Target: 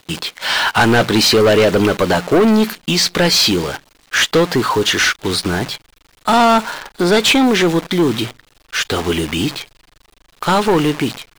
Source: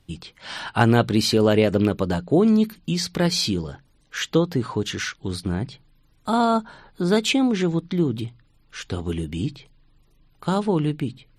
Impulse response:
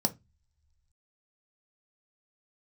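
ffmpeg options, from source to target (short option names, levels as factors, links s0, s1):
-filter_complex "[0:a]acrusher=bits=8:dc=4:mix=0:aa=0.000001,asubboost=boost=3.5:cutoff=64,asplit=2[s0][s1];[s1]highpass=f=720:p=1,volume=20,asoftclip=type=tanh:threshold=0.668[s2];[s0][s2]amix=inputs=2:normalize=0,lowpass=f=5800:p=1,volume=0.501"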